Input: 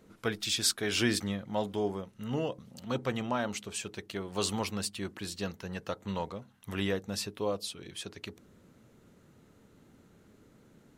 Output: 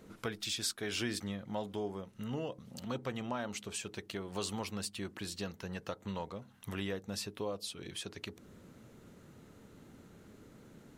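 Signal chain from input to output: compressor 2:1, threshold -46 dBFS, peak gain reduction 13 dB; gain +3.5 dB

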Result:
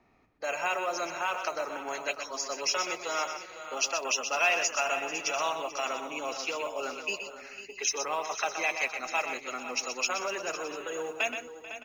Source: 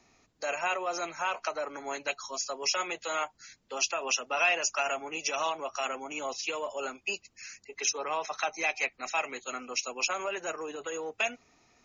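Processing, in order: low-pass opened by the level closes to 2000 Hz, open at -28 dBFS; modulation noise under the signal 31 dB; on a send: tapped delay 0.124/0.439/0.504/0.614/0.693 s -8/-17.5/-12.5/-18/-19.5 dB

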